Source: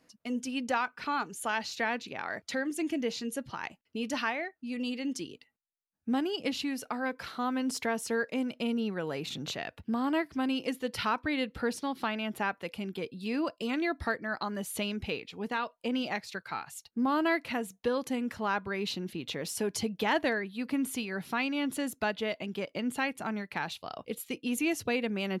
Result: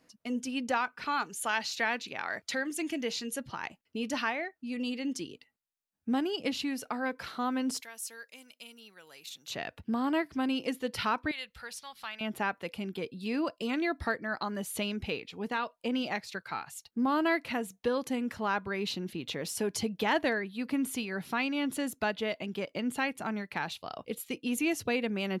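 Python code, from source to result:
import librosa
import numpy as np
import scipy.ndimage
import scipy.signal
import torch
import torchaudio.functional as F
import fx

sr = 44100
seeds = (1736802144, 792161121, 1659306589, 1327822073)

y = fx.tilt_shelf(x, sr, db=-3.5, hz=910.0, at=(1.07, 3.4))
y = fx.pre_emphasis(y, sr, coefficient=0.97, at=(7.8, 9.5), fade=0.02)
y = fx.tone_stack(y, sr, knobs='10-0-10', at=(11.31, 12.21))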